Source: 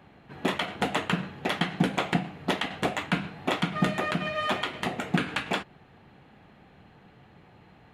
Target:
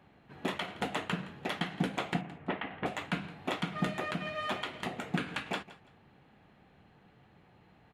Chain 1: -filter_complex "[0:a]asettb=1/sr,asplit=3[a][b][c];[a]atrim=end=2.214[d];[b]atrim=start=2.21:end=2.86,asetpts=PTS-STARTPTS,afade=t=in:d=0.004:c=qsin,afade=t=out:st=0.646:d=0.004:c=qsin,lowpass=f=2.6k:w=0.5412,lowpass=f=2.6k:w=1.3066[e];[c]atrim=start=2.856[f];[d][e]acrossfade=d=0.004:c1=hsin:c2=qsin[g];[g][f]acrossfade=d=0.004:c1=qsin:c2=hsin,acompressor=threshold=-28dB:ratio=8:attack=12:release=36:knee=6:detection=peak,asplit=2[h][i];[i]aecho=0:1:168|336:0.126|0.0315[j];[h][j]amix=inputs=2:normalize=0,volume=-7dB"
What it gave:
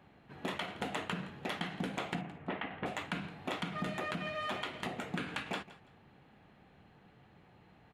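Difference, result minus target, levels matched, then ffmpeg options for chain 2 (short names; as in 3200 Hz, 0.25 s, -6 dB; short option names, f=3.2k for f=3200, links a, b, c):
compressor: peak gain reduction +10 dB
-filter_complex "[0:a]asettb=1/sr,asplit=3[a][b][c];[a]atrim=end=2.214[d];[b]atrim=start=2.21:end=2.86,asetpts=PTS-STARTPTS,afade=t=in:d=0.004:c=qsin,afade=t=out:st=0.646:d=0.004:c=qsin,lowpass=f=2.6k:w=0.5412,lowpass=f=2.6k:w=1.3066[e];[c]atrim=start=2.856[f];[d][e]acrossfade=d=0.004:c1=hsin:c2=qsin[g];[g][f]acrossfade=d=0.004:c1=qsin:c2=hsin,asplit=2[h][i];[i]aecho=0:1:168|336:0.126|0.0315[j];[h][j]amix=inputs=2:normalize=0,volume=-7dB"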